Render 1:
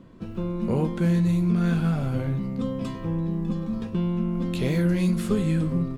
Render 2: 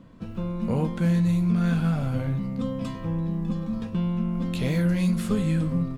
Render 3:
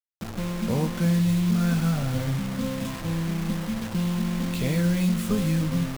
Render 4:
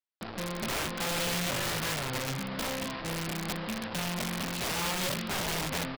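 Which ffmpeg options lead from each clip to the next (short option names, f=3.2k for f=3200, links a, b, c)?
-af "equalizer=f=370:w=5.6:g=-11.5"
-af "acrusher=bits=5:mix=0:aa=0.000001"
-af "bass=f=250:g=-11,treble=f=4k:g=-2,aresample=11025,aresample=44100,aeval=exprs='(mod(22.4*val(0)+1,2)-1)/22.4':c=same"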